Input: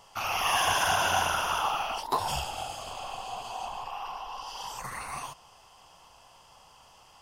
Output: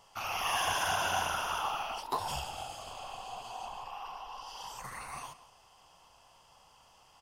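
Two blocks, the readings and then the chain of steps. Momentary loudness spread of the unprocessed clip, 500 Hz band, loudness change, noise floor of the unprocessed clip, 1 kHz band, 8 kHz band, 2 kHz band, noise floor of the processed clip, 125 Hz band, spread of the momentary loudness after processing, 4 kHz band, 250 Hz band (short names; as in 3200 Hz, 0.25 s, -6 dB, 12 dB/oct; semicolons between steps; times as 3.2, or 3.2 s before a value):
14 LU, -5.5 dB, -5.5 dB, -57 dBFS, -5.5 dB, -5.5 dB, -5.5 dB, -62 dBFS, -5.5 dB, 14 LU, -5.5 dB, -5.5 dB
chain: outdoor echo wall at 30 m, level -16 dB; gain -5.5 dB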